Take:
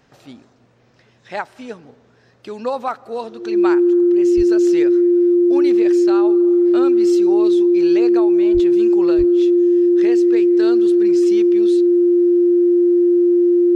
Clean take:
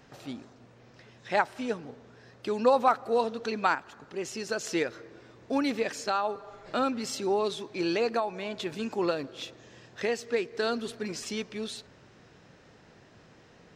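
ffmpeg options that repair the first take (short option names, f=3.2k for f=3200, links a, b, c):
-filter_complex "[0:a]bandreject=f=350:w=30,asplit=3[a][b][c];[a]afade=t=out:st=4.36:d=0.02[d];[b]highpass=f=140:w=0.5412,highpass=f=140:w=1.3066,afade=t=in:st=4.36:d=0.02,afade=t=out:st=4.48:d=0.02[e];[c]afade=t=in:st=4.48:d=0.02[f];[d][e][f]amix=inputs=3:normalize=0,asplit=3[g][h][i];[g]afade=t=out:st=8.53:d=0.02[j];[h]highpass=f=140:w=0.5412,highpass=f=140:w=1.3066,afade=t=in:st=8.53:d=0.02,afade=t=out:st=8.65:d=0.02[k];[i]afade=t=in:st=8.65:d=0.02[l];[j][k][l]amix=inputs=3:normalize=0,asplit=3[m][n][o];[m]afade=t=out:st=9.17:d=0.02[p];[n]highpass=f=140:w=0.5412,highpass=f=140:w=1.3066,afade=t=in:st=9.17:d=0.02,afade=t=out:st=9.29:d=0.02[q];[o]afade=t=in:st=9.29:d=0.02[r];[p][q][r]amix=inputs=3:normalize=0"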